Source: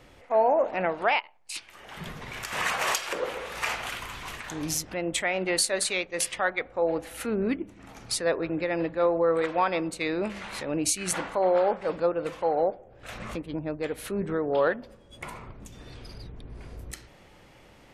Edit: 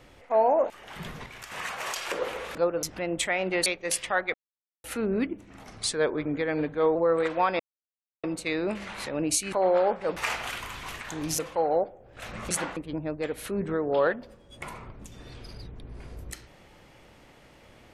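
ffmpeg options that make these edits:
-filter_complex "[0:a]asplit=17[a][b][c][d][e][f][g][h][i][j][k][l][m][n][o][p][q];[a]atrim=end=0.702[r];[b]atrim=start=1.708:end=2.272[s];[c]atrim=start=2.268:end=2.972,asetpts=PTS-STARTPTS,volume=-7dB[t];[d]atrim=start=2.968:end=3.562[u];[e]atrim=start=11.968:end=12.252[v];[f]atrim=start=4.778:end=5.612[w];[g]atrim=start=5.948:end=6.63,asetpts=PTS-STARTPTS,afade=t=out:st=0.678:d=0.004:c=hsin[x];[h]atrim=start=6.63:end=7.13,asetpts=PTS-STARTPTS,volume=0[y];[i]atrim=start=7.13:end=7.934,asetpts=PTS-STARTPTS,afade=t=in:d=0.004:c=hsin[z];[j]atrim=start=7.93:end=9.14,asetpts=PTS-STARTPTS,asetrate=40572,aresample=44100,atrim=end_sample=58001,asetpts=PTS-STARTPTS[aa];[k]atrim=start=9.136:end=9.78,asetpts=PTS-STARTPTS,afade=t=out:st=0.64:d=0.004:c=hsin,apad=pad_dur=0.64[ab];[l]atrim=start=9.78:end=11.072,asetpts=PTS-STARTPTS,afade=t=in:d=0.004:c=hsin[ac];[m]atrim=start=11.328:end=11.972[ad];[n]atrim=start=3.558:end=4.782[ae];[o]atrim=start=12.248:end=13.372[af];[p]atrim=start=11.068:end=11.332[ag];[q]atrim=start=13.368[ah];[r][s]acrossfade=d=0.004:c1=hsin:c2=hsin[ai];[ai][t]acrossfade=d=0.004:c1=hsin:c2=hsin[aj];[aj][u]acrossfade=d=0.004:c1=hsin:c2=hsin[ak];[ak][v]acrossfade=d=0.004:c1=hsin:c2=hsin[al];[al][w]acrossfade=d=0.004:c1=hsin:c2=hsin[am];[x][y][z]concat=n=3:v=0:a=1[an];[am][an]acrossfade=d=0.004:c1=hsin:c2=hsin[ao];[ao][aa]acrossfade=d=0.004:c1=hsin:c2=hsin[ap];[ab][ac]concat=n=2:v=0:a=1[aq];[ap][aq]acrossfade=d=0.004:c1=hsin:c2=hsin[ar];[ar][ad]acrossfade=d=0.004:c1=hsin:c2=hsin[as];[as][ae]acrossfade=d=0.004:c1=hsin:c2=hsin[at];[at][af]acrossfade=d=0.004:c1=hsin:c2=hsin[au];[au][ag]acrossfade=d=0.004:c1=hsin:c2=hsin[av];[av][ah]acrossfade=d=0.004:c1=hsin:c2=hsin"

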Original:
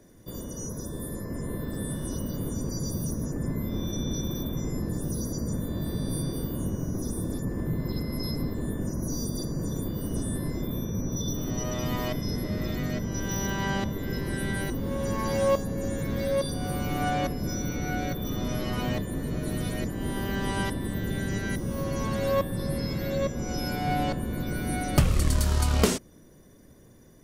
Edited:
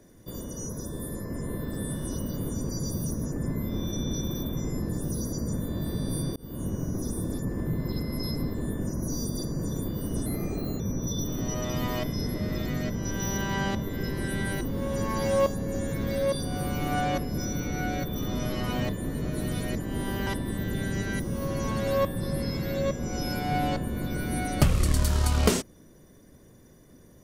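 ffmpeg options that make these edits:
-filter_complex "[0:a]asplit=5[a][b][c][d][e];[a]atrim=end=6.36,asetpts=PTS-STARTPTS,afade=t=out:st=6.356:d=0.004:c=hsin[f];[b]atrim=start=6.36:end=10.264,asetpts=PTS-STARTPTS,afade=t=in:d=0.47:c=qsin[g];[c]atrim=start=10.26:end=10.89,asetpts=PTS-STARTPTS,asetrate=51597,aresample=44100,atrim=end_sample=23746,asetpts=PTS-STARTPTS[h];[d]atrim=start=10.886:end=20.362[i];[e]atrim=start=20.628[j];[f][g]concat=n=2:v=0:a=1[k];[k][h]acrossfade=d=0.004:c1=hsin:c2=hsin[l];[l][i]acrossfade=d=0.004:c1=hsin:c2=hsin[m];[m][j]acrossfade=d=0.004:c1=hsin:c2=hsin"

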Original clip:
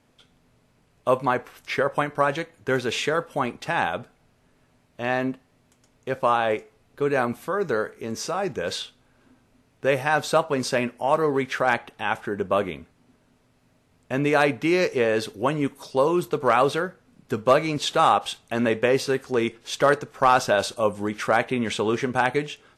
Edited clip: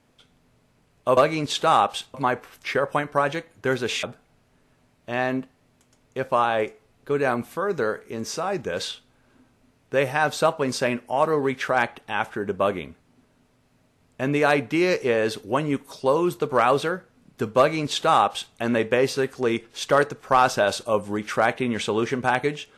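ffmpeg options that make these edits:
-filter_complex "[0:a]asplit=4[a][b][c][d];[a]atrim=end=1.172[e];[b]atrim=start=17.488:end=18.462[f];[c]atrim=start=1.168:end=3.062[g];[d]atrim=start=3.938[h];[e][f]acrossfade=d=0.004:c1=hsin:c2=hsin[i];[i][g]acrossfade=d=0.004:c1=hsin:c2=hsin[j];[j][h]acrossfade=d=0.004:c1=hsin:c2=hsin"

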